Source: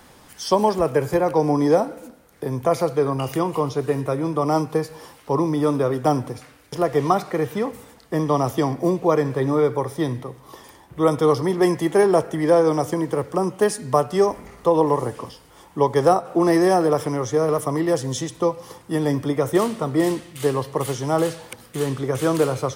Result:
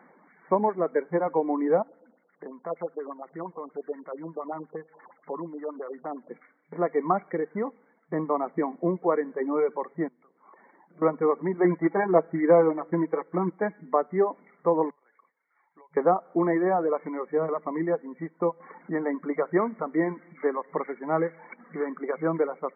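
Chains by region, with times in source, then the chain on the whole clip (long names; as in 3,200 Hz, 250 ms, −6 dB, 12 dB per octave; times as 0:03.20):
0:01.82–0:06.31: downward compressor 1.5 to 1, threshold −46 dBFS + notch filter 2,300 Hz, Q 6.3 + auto-filter low-pass sine 8.5 Hz 550–3,000 Hz
0:10.08–0:11.02: low-shelf EQ 63 Hz −10.5 dB + downward compressor 10 to 1, threshold −41 dBFS + highs frequency-modulated by the lows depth 0.31 ms
0:11.64–0:13.86: comb filter 6.1 ms, depth 68% + floating-point word with a short mantissa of 2 bits
0:14.90–0:15.97: resonant band-pass 6,700 Hz, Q 0.55 + downward compressor 16 to 1, threshold −44 dBFS
0:18.60–0:22.15: upward compression, threshold −26 dBFS + dynamic equaliser 1,800 Hz, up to +4 dB, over −40 dBFS, Q 0.97
whole clip: brick-wall band-pass 160–2,300 Hz; reverb reduction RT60 0.99 s; level −5 dB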